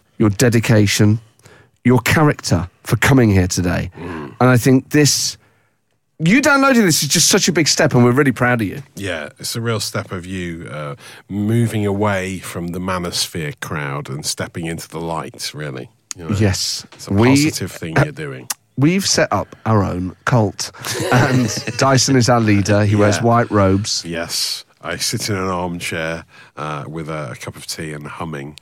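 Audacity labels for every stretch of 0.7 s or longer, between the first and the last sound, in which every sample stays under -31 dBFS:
5.340000	6.200000	silence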